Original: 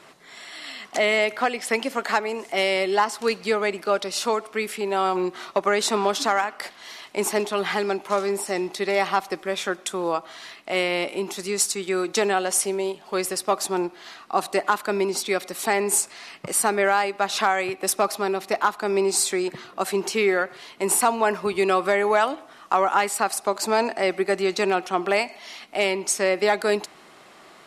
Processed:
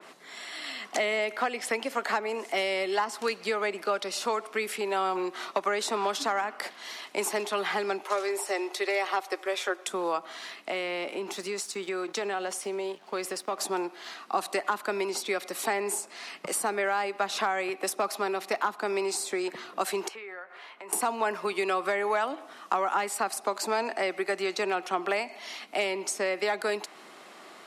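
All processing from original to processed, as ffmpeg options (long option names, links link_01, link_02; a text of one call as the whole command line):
ffmpeg -i in.wav -filter_complex "[0:a]asettb=1/sr,asplit=3[link_01][link_02][link_03];[link_01]atrim=end=8.034[link_04];[link_02]atrim=start=8.03:end=9.86,asetpts=PTS-STARTPTS,afade=type=in:duration=0.004:curve=qsin,afade=type=out:start_time=1.826:duration=0.004:curve=qsin,highpass=frequency=360:width=0.5412,highpass=frequency=360:width=1.3066,aecho=1:1:5.5:0.35,atrim=end_sample=80703[link_05];[link_03]atrim=start=9.856[link_06];[link_04][link_05]acrossfade=duration=0.004:curve1=hsin:curve2=qsin[link_07];[link_07][link_06]acrossfade=duration=0.004:curve1=qsin:curve2=hsin,asettb=1/sr,asplit=3[link_08][link_09][link_10];[link_08]atrim=end=10.704[link_11];[link_09]atrim=start=10.7:end=13.59,asetpts=PTS-STARTPTS,afade=type=in:duration=0.004:curve=qsin,afade=type=out:start_time=2.886:duration=0.004:curve=qsin,acompressor=threshold=-27dB:ratio=2.5:attack=3.2:release=140:knee=1:detection=peak,aeval=exprs='sgn(val(0))*max(abs(val(0))-0.00282,0)':channel_layout=same,highshelf=frequency=6900:gain=-8[link_12];[link_10]atrim=start=13.586[link_13];[link_11][link_12]acrossfade=duration=0.004:curve1=hsin:curve2=qsin[link_14];[link_14][link_13]acrossfade=duration=0.004:curve1=qsin:curve2=hsin,asettb=1/sr,asplit=3[link_15][link_16][link_17];[link_15]atrim=end=20.084[link_18];[link_16]atrim=start=20.08:end=20.93,asetpts=PTS-STARTPTS,afade=type=in:duration=0.004:curve=qsin,afade=type=out:start_time=0.846:duration=0.004:curve=qsin,acrossover=split=550 2700:gain=0.158 1 0.126[link_19][link_20][link_21];[link_19][link_20][link_21]amix=inputs=3:normalize=0,asplit=2[link_22][link_23];[link_23]adelay=17,volume=-10.5dB[link_24];[link_22][link_24]amix=inputs=2:normalize=0,atrim=end_sample=37485,acompressor=threshold=-41dB:ratio=4:attack=3.2:release=140:knee=1:detection=peak[link_25];[link_17]atrim=start=20.926[link_26];[link_18][link_25]acrossfade=duration=0.004:curve1=hsin:curve2=qsin[link_27];[link_27][link_26]acrossfade=duration=0.004:curve1=qsin:curve2=hsin,acrossover=split=360|950[link_28][link_29][link_30];[link_28]acompressor=threshold=-41dB:ratio=4[link_31];[link_29]acompressor=threshold=-31dB:ratio=4[link_32];[link_30]acompressor=threshold=-29dB:ratio=4[link_33];[link_31][link_32][link_33]amix=inputs=3:normalize=0,highpass=frequency=190:width=0.5412,highpass=frequency=190:width=1.3066,adynamicequalizer=threshold=0.00891:dfrequency=2800:dqfactor=0.7:tfrequency=2800:tqfactor=0.7:attack=5:release=100:ratio=0.375:range=1.5:mode=cutabove:tftype=highshelf" out.wav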